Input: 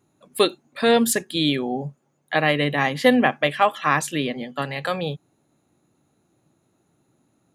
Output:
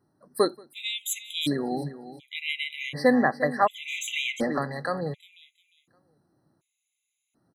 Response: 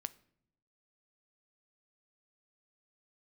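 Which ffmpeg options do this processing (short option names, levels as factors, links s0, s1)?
-filter_complex "[0:a]asplit=2[s0][s1];[s1]aecho=0:1:353|706|1059:0.211|0.0507|0.0122[s2];[s0][s2]amix=inputs=2:normalize=0,asplit=3[s3][s4][s5];[s3]afade=t=out:st=3.87:d=0.02[s6];[s4]asplit=2[s7][s8];[s8]highpass=f=720:p=1,volume=17.8,asoftclip=type=tanh:threshold=0.668[s9];[s7][s9]amix=inputs=2:normalize=0,lowpass=f=1300:p=1,volume=0.501,afade=t=in:st=3.87:d=0.02,afade=t=out:st=4.57:d=0.02[s10];[s5]afade=t=in:st=4.57:d=0.02[s11];[s6][s10][s11]amix=inputs=3:normalize=0,asplit=2[s12][s13];[s13]adelay=180.8,volume=0.0447,highshelf=f=4000:g=-4.07[s14];[s12][s14]amix=inputs=2:normalize=0,afftfilt=real='re*gt(sin(2*PI*0.68*pts/sr)*(1-2*mod(floor(b*sr/1024/2000),2)),0)':imag='im*gt(sin(2*PI*0.68*pts/sr)*(1-2*mod(floor(b*sr/1024/2000),2)),0)':win_size=1024:overlap=0.75,volume=0.668"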